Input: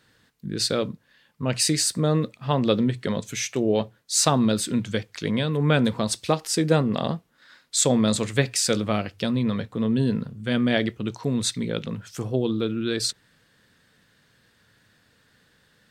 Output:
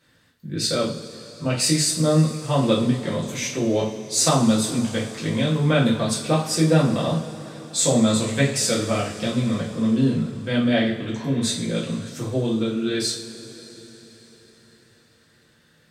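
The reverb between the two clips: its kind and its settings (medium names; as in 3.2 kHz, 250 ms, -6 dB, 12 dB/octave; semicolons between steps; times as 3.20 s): two-slope reverb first 0.4 s, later 4.7 s, from -20 dB, DRR -6.5 dB; trim -5.5 dB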